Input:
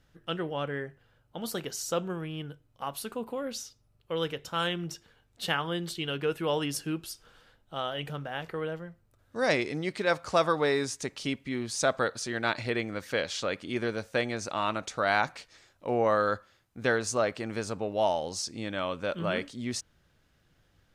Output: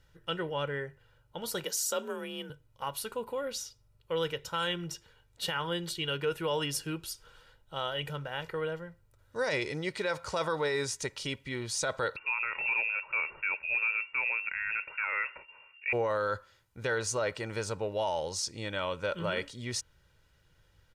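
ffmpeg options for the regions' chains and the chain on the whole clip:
-filter_complex "[0:a]asettb=1/sr,asplit=3[s0][s1][s2];[s0]atrim=end=1.644[s3];[s1]atrim=start=1.64:end=2.5,asetpts=PTS-STARTPTS,afade=t=in:d=0.004:c=qsin,afade=t=out:st=0.856:d=0.004:c=qsin,highpass=130,highshelf=f=6300:g=9.5,afreqshift=41[s4];[s2]atrim=start=2.496[s5];[s3][s4]acrossfade=d=0.004:c1=hsin:c2=qsin[s6];[s6][s5]acrossfade=d=0.004:c1=qsin:c2=hsin,asettb=1/sr,asplit=3[s7][s8][s9];[s7]atrim=end=12.164[s10];[s8]atrim=start=12.16:end=15.93,asetpts=PTS-STARTPTS,afade=t=in:d=0.004:c=qsin,afade=t=out:st=3.766:d=0.004:c=qsin,aemphasis=mode=reproduction:type=bsi,asoftclip=type=hard:threshold=0.112,lowpass=f=2400:t=q:w=0.5098,lowpass=f=2400:t=q:w=0.6013,lowpass=f=2400:t=q:w=0.9,lowpass=f=2400:t=q:w=2.563,afreqshift=-2800[s11];[s9]atrim=start=15.926[s12];[s10][s11]acrossfade=d=0.004:c1=hsin:c2=qsin[s13];[s13][s12]acrossfade=d=0.004:c1=qsin:c2=hsin,equalizer=f=370:w=1:g=-4,aecho=1:1:2.1:0.53,alimiter=limit=0.0794:level=0:latency=1:release=25"

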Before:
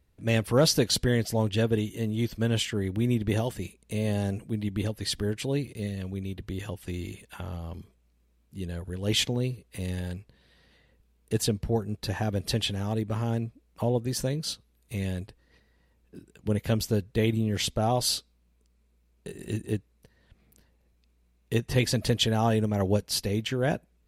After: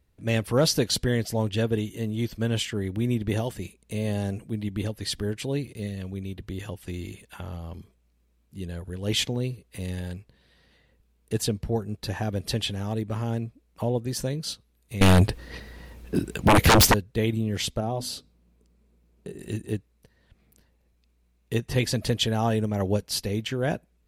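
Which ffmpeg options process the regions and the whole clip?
-filter_complex "[0:a]asettb=1/sr,asplit=3[s0][s1][s2];[s0]atrim=end=15.014[s3];[s1]atrim=start=15.01:end=16.94,asetpts=PTS-STARTPTS,afade=t=in:d=0.004:c=qsin,afade=t=out:st=1.926:d=0.004:c=qsin,equalizer=f=7600:t=o:w=0.26:g=-2.5,aeval=exprs='0.251*sin(PI/2*7.94*val(0)/0.251)':c=same[s4];[s2]atrim=start=16.936[s5];[s3][s4]acrossfade=d=0.004:c1=hsin:c2=qsin[s6];[s6][s5]acrossfade=d=0.004:c1=qsin:c2=hsin,asettb=1/sr,asplit=3[s7][s8][s9];[s7]atrim=end=17.804[s10];[s8]atrim=start=17.8:end=19.39,asetpts=PTS-STARTPTS,afade=t=in:d=0.004:c=qsin,afade=t=out:st=1.586:d=0.004:c=qsin,equalizer=f=240:w=0.31:g=9,bandreject=f=50:t=h:w=6,bandreject=f=100:t=h:w=6,bandreject=f=150:t=h:w=6,bandreject=f=200:t=h:w=6,bandreject=f=250:t=h:w=6,bandreject=f=300:t=h:w=6,acompressor=threshold=0.00708:ratio=1.5:attack=3.2:release=140:knee=1:detection=peak[s11];[s9]atrim=start=19.386[s12];[s10][s11]acrossfade=d=0.004:c1=hsin:c2=qsin[s13];[s13][s12]acrossfade=d=0.004:c1=qsin:c2=hsin"

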